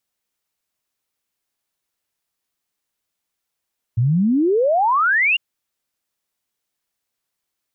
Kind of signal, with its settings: log sweep 110 Hz -> 2900 Hz 1.40 s -13.5 dBFS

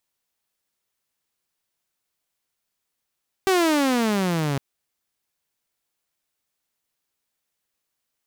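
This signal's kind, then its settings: gliding synth tone saw, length 1.11 s, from 391 Hz, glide -18.5 st, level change -6 dB, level -13.5 dB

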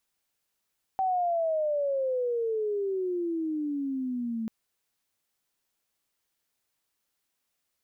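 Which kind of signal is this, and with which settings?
chirp logarithmic 770 Hz -> 220 Hz -23.5 dBFS -> -29 dBFS 3.49 s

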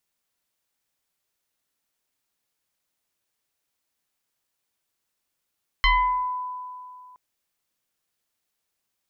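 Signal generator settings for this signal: FM tone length 1.32 s, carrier 1000 Hz, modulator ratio 1.04, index 2.4, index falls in 0.70 s exponential, decay 2.45 s, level -14 dB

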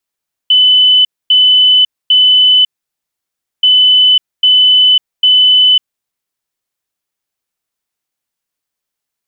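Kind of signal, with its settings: beep pattern sine 3010 Hz, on 0.55 s, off 0.25 s, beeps 3, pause 0.98 s, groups 2, -4 dBFS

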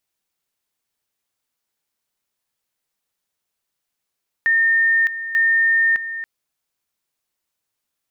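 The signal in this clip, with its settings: two-level tone 1820 Hz -13 dBFS, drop 12 dB, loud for 0.61 s, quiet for 0.28 s, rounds 2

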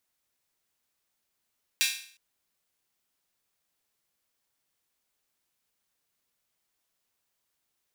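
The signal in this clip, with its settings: open hi-hat length 0.36 s, high-pass 2500 Hz, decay 0.51 s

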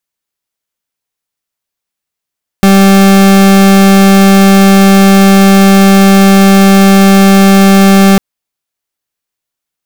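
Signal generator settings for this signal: pulse 195 Hz, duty 40% -3.5 dBFS 5.55 s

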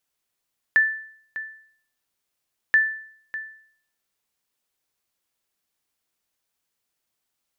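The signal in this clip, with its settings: sonar ping 1760 Hz, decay 0.59 s, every 1.98 s, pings 2, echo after 0.60 s, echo -14.5 dB -10.5 dBFS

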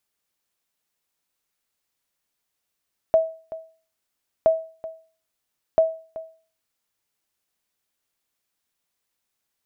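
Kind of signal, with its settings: sonar ping 647 Hz, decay 0.40 s, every 1.32 s, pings 3, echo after 0.38 s, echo -17 dB -9.5 dBFS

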